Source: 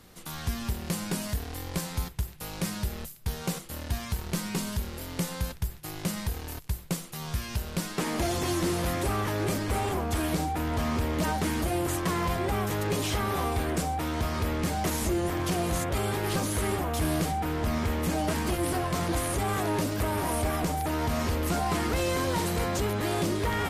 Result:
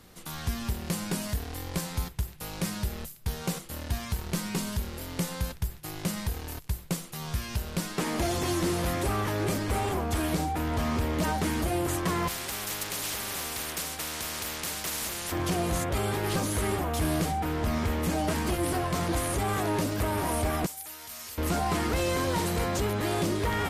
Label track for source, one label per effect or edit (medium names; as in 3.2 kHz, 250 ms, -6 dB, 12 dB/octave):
12.280000	15.320000	spectrum-flattening compressor 4:1
20.660000	21.380000	pre-emphasis filter coefficient 0.97